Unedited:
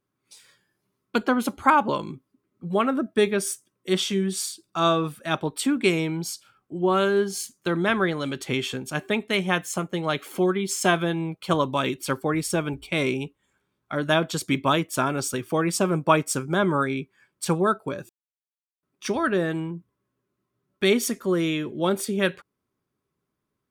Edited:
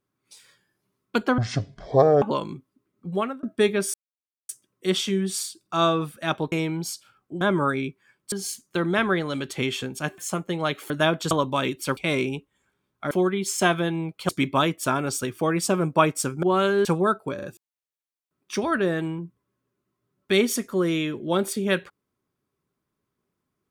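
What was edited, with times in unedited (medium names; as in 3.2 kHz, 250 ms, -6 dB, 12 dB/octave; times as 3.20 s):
1.38–1.80 s: speed 50%
2.69–3.01 s: fade out
3.52 s: insert silence 0.55 s
5.55–5.92 s: delete
6.81–7.23 s: swap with 16.54–17.45 s
9.09–9.62 s: delete
10.34–11.52 s: swap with 13.99–14.40 s
12.18–12.85 s: delete
17.95 s: stutter 0.04 s, 3 plays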